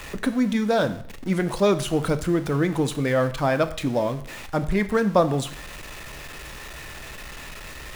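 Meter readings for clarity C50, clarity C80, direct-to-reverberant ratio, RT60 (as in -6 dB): 14.5 dB, 17.0 dB, 10.5 dB, 0.60 s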